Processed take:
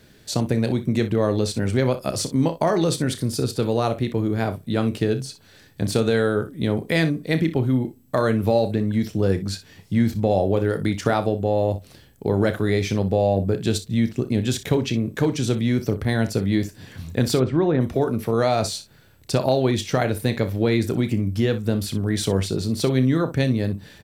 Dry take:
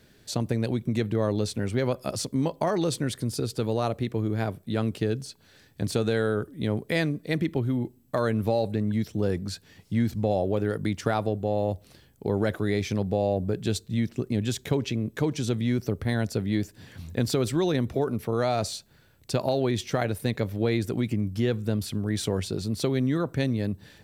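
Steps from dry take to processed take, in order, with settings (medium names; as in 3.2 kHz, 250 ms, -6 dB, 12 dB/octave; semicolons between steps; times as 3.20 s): 17.38–17.81 s: low-pass 1.6 kHz 12 dB/octave; early reflections 31 ms -12 dB, 61 ms -14 dB; trim +5 dB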